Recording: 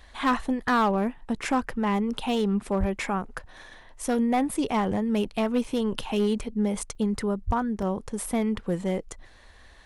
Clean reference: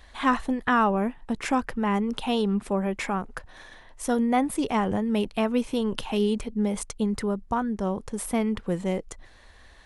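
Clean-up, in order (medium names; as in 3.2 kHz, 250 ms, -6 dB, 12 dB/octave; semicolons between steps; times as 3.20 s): clip repair -17.5 dBFS; 2.79–2.91 s: high-pass 140 Hz 24 dB/octave; 7.46–7.58 s: high-pass 140 Hz 24 dB/octave; interpolate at 5.64/6.95/7.82 s, 4 ms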